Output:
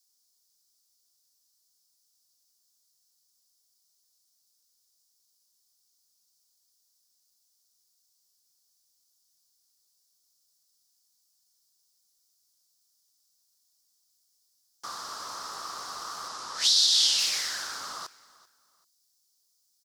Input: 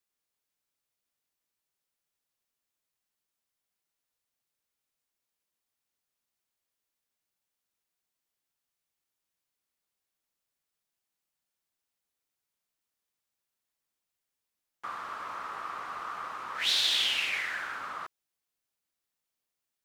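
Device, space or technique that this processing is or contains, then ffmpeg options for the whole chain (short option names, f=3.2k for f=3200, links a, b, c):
over-bright horn tweeter: -filter_complex "[0:a]asettb=1/sr,asplit=3[a][b][c];[a]atrim=end=16.284[d];[b]atrim=start=16.28:end=17.19,asetpts=PTS-STARTPTS,afade=t=in:d=0.004:c=qsin,afade=t=out:st=0.906:d=0.004:c=qsin,lowpass=10k[e];[c]atrim=start=17.186[f];[d][e]acrossfade=d=0.004:c1=hsin:c2=qsin[g];[g][f]acrossfade=d=0.004:c1=qsin:c2=hsin,highshelf=f=3.5k:t=q:w=3:g=13.5,alimiter=limit=-11dB:level=0:latency=1:release=319,aecho=1:1:389|778:0.0891|0.0258"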